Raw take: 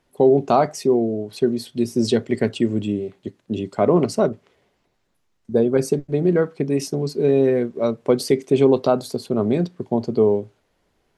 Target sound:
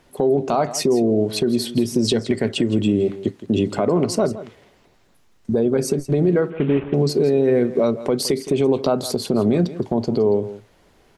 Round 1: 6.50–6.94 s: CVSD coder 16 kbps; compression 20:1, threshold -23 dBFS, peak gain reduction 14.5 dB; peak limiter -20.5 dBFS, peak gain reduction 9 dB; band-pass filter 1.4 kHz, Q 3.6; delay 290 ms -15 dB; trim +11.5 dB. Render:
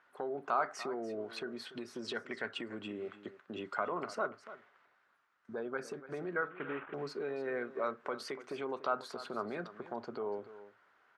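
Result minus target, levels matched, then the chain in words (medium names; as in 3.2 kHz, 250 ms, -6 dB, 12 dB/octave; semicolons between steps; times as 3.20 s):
echo 124 ms late; 1 kHz band +10.0 dB
6.50–6.94 s: CVSD coder 16 kbps; compression 20:1, threshold -23 dBFS, peak gain reduction 14.5 dB; peak limiter -20.5 dBFS, peak gain reduction 9 dB; delay 166 ms -15 dB; trim +11.5 dB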